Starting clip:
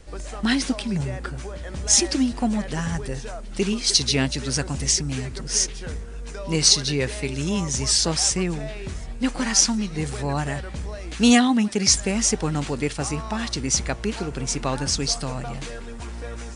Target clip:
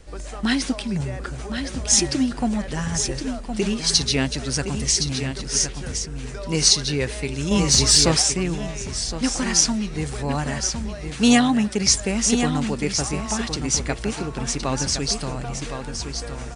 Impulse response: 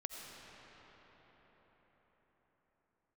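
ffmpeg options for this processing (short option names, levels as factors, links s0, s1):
-filter_complex "[0:a]aecho=1:1:1065:0.422,asettb=1/sr,asplit=3[s0][s1][s2];[s0]atrim=end=7.514[s3];[s1]atrim=start=7.51:end=8.22,asetpts=PTS-STARTPTS,afade=t=in:d=0.004:c=qsin,afade=t=out:st=0.706:d=0.004:c=qsin,acontrast=28[s4];[s2]atrim=start=8.216[s5];[s3][s4]acrossfade=d=0.004:c1=hsin:c2=qsin[s6];[s6][s5]acrossfade=d=0.004:c1=qsin:c2=hsin"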